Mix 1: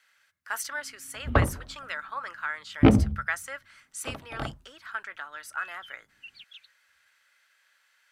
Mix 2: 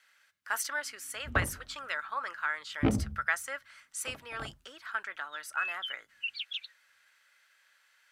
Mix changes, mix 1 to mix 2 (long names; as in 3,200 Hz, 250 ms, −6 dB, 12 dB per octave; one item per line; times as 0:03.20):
first sound −10.0 dB
second sound: add meter weighting curve D